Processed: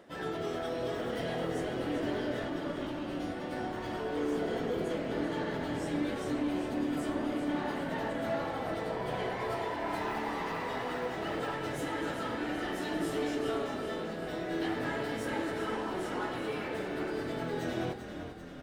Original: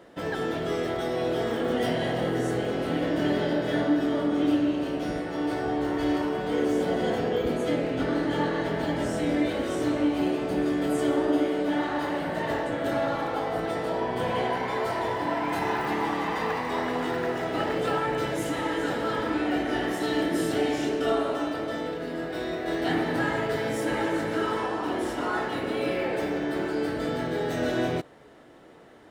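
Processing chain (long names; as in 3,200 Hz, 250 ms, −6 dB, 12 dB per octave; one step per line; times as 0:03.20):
hum removal 50.24 Hz, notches 28
soft clipping −23 dBFS, distortion −15 dB
time stretch by phase vocoder 0.64×
echo with shifted repeats 392 ms, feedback 61%, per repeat −36 Hz, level −9 dB
level −2 dB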